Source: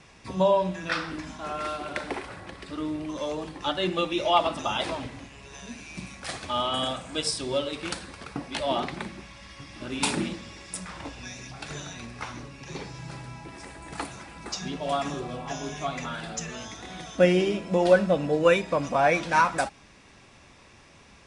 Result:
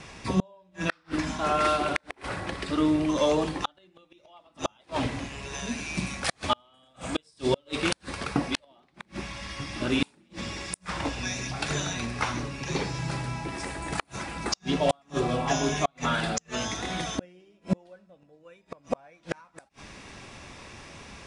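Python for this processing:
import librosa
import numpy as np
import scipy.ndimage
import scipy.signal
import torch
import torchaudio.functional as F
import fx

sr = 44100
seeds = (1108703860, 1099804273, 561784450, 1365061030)

y = fx.gate_flip(x, sr, shuts_db=-20.0, range_db=-40)
y = F.gain(torch.from_numpy(y), 8.0).numpy()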